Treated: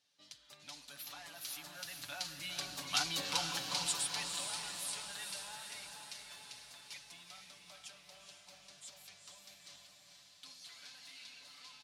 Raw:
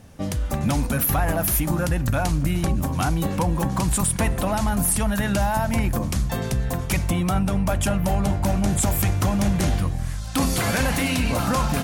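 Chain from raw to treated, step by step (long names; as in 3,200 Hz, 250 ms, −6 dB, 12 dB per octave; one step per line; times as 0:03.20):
source passing by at 0:03.20, 7 m/s, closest 2.3 metres
resonant band-pass 4,200 Hz, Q 2.7
comb filter 6.9 ms
on a send: feedback delay with all-pass diffusion 458 ms, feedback 57%, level −5 dB
on the sum: level +7.5 dB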